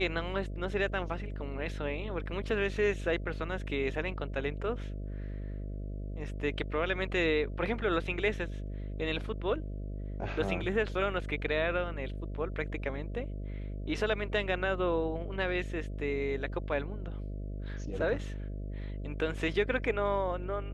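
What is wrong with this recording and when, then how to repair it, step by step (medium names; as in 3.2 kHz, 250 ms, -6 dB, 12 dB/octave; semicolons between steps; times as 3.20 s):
buzz 50 Hz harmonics 13 -38 dBFS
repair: de-hum 50 Hz, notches 13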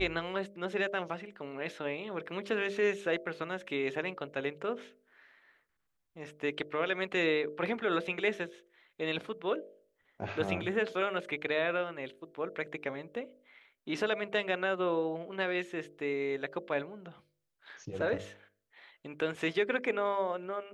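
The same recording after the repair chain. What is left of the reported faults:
nothing left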